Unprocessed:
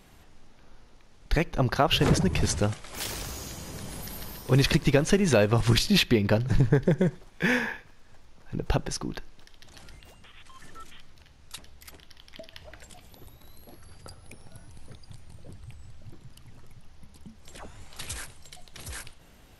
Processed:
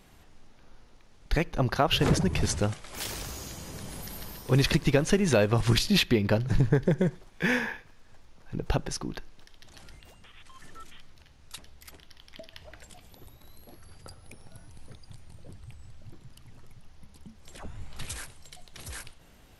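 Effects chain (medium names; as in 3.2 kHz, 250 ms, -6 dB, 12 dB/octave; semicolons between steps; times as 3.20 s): 17.63–18.05 s: tone controls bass +8 dB, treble -5 dB; trim -1.5 dB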